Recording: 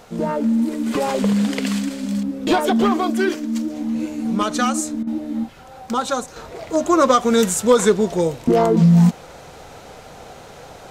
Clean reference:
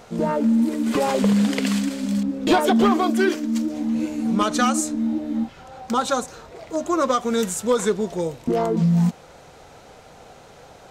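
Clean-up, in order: interpolate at 5.03 s, 40 ms; expander -32 dBFS, range -21 dB; trim 0 dB, from 6.36 s -6 dB

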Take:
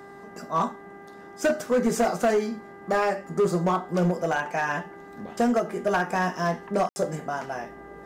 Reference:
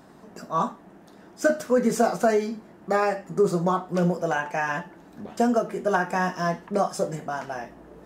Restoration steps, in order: clip repair -17 dBFS; de-hum 398.8 Hz, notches 5; room tone fill 6.89–6.96 s

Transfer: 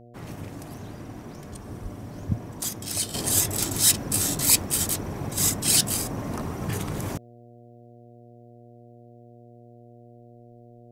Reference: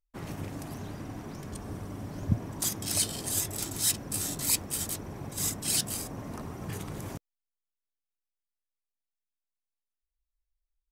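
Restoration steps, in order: de-hum 119.2 Hz, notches 6; 1.82–1.94 s: high-pass 140 Hz 24 dB/octave; 3.14 s: gain correction -8 dB

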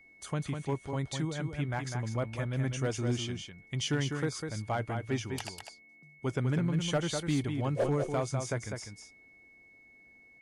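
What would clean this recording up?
clip repair -22.5 dBFS; band-stop 2.2 kHz, Q 30; inverse comb 200 ms -6 dB

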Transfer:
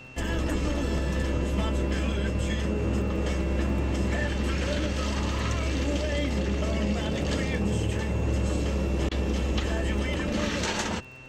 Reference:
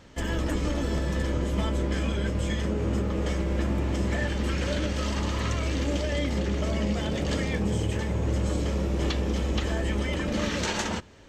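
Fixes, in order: de-click; de-hum 128.4 Hz, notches 21; band-stop 2.7 kHz, Q 30; interpolate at 9.09 s, 22 ms

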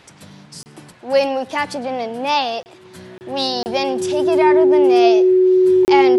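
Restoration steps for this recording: band-stop 370 Hz, Q 30; interpolate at 0.63/2.63/3.18/3.63/5.85 s, 29 ms; inverse comb 106 ms -22 dB

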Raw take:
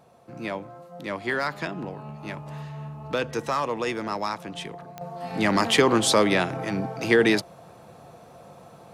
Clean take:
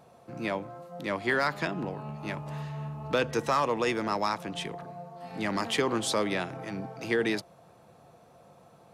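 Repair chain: de-click; trim 0 dB, from 5.01 s -8.5 dB

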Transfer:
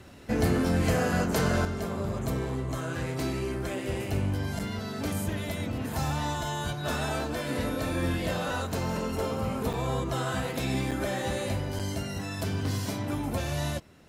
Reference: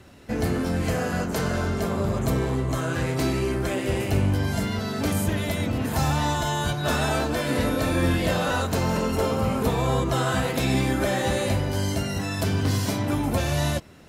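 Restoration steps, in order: interpolate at 4.59/9.73/10.91/11.79 s, 6.4 ms; gain correction +6.5 dB, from 1.65 s

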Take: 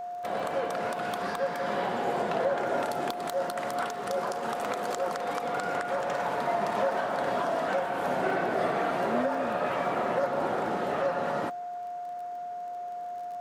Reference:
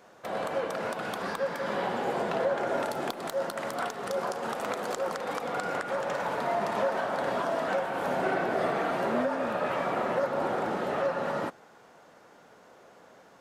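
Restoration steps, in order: de-click; band-stop 710 Hz, Q 30

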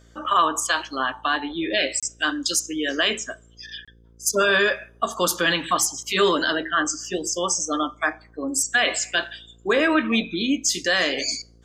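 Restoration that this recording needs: de-hum 57.2 Hz, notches 9; interpolate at 2.00/3.85 s, 26 ms

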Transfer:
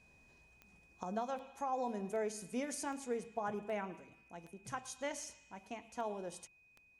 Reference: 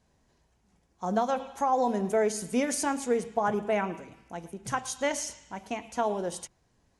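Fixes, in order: de-click; band-stop 2.5 kHz, Q 30; trim 0 dB, from 1.03 s +12 dB

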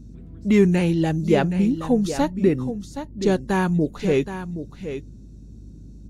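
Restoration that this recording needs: de-hum 50.5 Hz, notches 4; noise print and reduce 25 dB; inverse comb 772 ms -10.5 dB

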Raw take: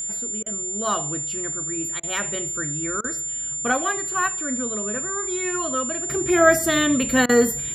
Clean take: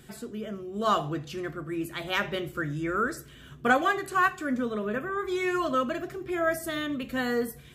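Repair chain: band-stop 7.2 kHz, Q 30; interpolate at 0.43/2.00/3.01/7.26 s, 31 ms; gain correction -11.5 dB, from 6.09 s

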